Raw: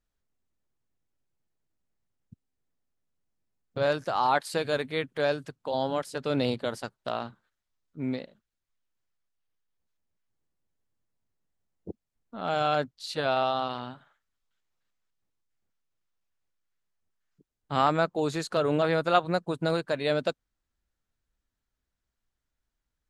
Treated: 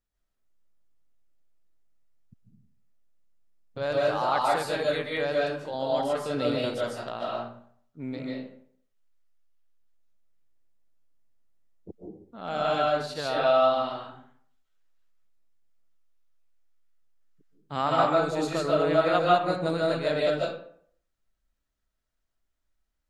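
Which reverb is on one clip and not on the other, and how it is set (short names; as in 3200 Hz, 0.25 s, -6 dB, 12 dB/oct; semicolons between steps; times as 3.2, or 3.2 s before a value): digital reverb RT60 0.6 s, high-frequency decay 0.65×, pre-delay 0.105 s, DRR -4.5 dB; gain -4.5 dB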